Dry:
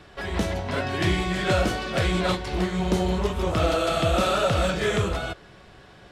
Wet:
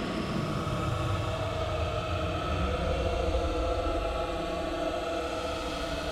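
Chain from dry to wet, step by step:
extreme stretch with random phases 33×, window 0.05 s, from 0:03.55
highs frequency-modulated by the lows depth 0.11 ms
level −9 dB

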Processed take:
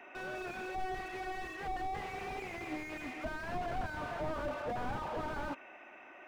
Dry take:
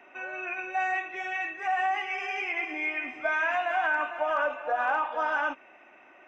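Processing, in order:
slew-rate limiting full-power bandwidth 10 Hz
level +1 dB

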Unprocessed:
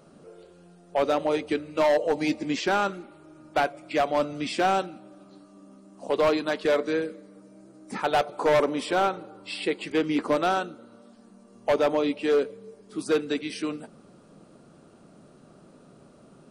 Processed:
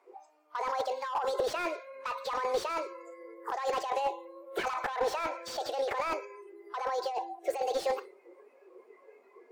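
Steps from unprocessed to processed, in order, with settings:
Chebyshev band-pass filter 210–8,900 Hz, order 4
wrong playback speed 45 rpm record played at 78 rpm
high-shelf EQ 6,100 Hz −11.5 dB
compressor whose output falls as the input rises −31 dBFS, ratio −1
feedback echo with a high-pass in the loop 116 ms, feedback 29%, level −21 dB
noise reduction from a noise print of the clip's start 17 dB
slew-rate limiting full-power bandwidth 48 Hz

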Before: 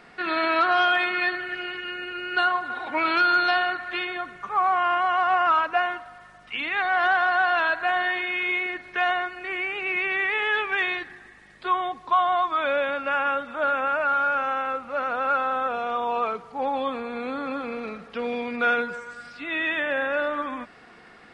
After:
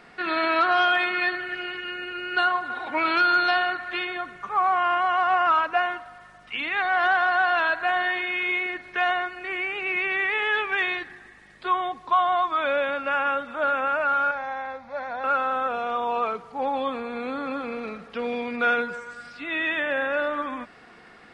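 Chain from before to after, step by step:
0:14.31–0:15.24: phaser with its sweep stopped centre 1,900 Hz, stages 8

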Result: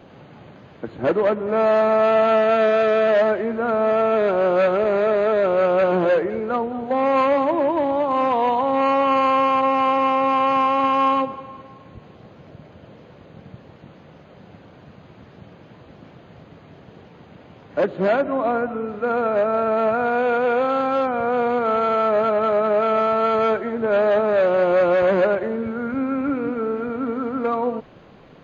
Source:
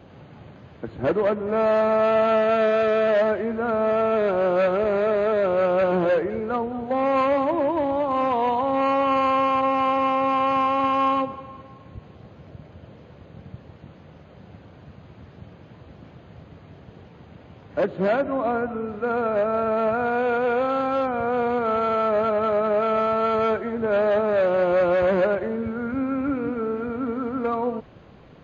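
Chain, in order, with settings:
parametric band 72 Hz −9 dB 1.6 octaves
level +3 dB

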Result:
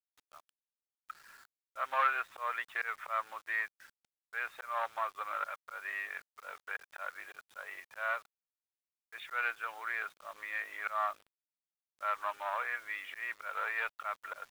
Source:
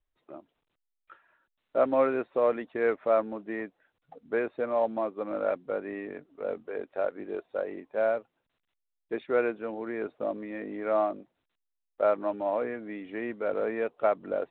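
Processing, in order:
volume swells 194 ms
in parallel at −2 dB: downward compressor 12 to 1, threshold −38 dBFS, peak gain reduction 19.5 dB
on the sum: tube saturation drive 15 dB, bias 0.4
Chebyshev high-pass filter 1,200 Hz, order 3
bit reduction 11 bits
level +7.5 dB

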